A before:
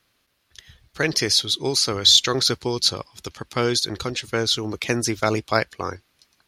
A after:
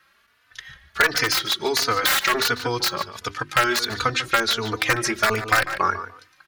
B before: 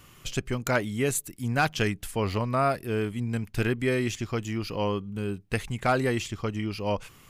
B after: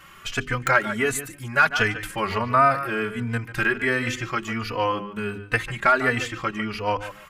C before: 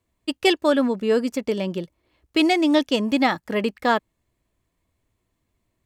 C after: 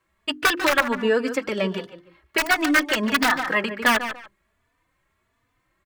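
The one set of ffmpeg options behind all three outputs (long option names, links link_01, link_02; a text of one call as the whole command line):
ffmpeg -i in.wav -filter_complex "[0:a]bandreject=frequency=50:width_type=h:width=6,bandreject=frequency=100:width_type=h:width=6,bandreject=frequency=150:width_type=h:width=6,bandreject=frequency=200:width_type=h:width=6,bandreject=frequency=250:width_type=h:width=6,bandreject=frequency=300:width_type=h:width=6,bandreject=frequency=350:width_type=h:width=6,bandreject=frequency=400:width_type=h:width=6,aeval=exprs='(mod(3.55*val(0)+1,2)-1)/3.55':channel_layout=same,asplit=2[link_01][link_02];[link_02]adelay=146,lowpass=frequency=4500:poles=1,volume=-13.5dB,asplit=2[link_03][link_04];[link_04]adelay=146,lowpass=frequency=4500:poles=1,volume=0.2[link_05];[link_03][link_05]amix=inputs=2:normalize=0[link_06];[link_01][link_06]amix=inputs=2:normalize=0,acompressor=threshold=-22dB:ratio=6,equalizer=frequency=1500:width=0.88:gain=14.5,asplit=2[link_07][link_08];[link_08]adelay=3.3,afreqshift=1.4[link_09];[link_07][link_09]amix=inputs=2:normalize=1,volume=3dB" out.wav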